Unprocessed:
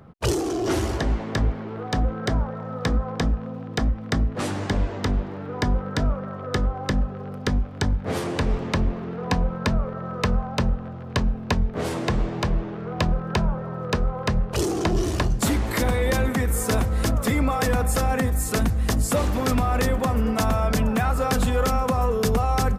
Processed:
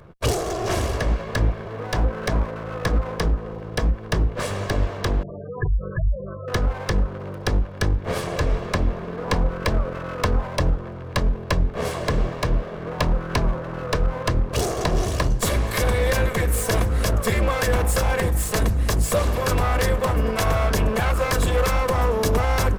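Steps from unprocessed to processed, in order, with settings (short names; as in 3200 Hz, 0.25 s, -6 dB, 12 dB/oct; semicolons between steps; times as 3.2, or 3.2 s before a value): minimum comb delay 1.8 ms; 5.23–6.48 spectral gate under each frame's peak -10 dB strong; gain +2.5 dB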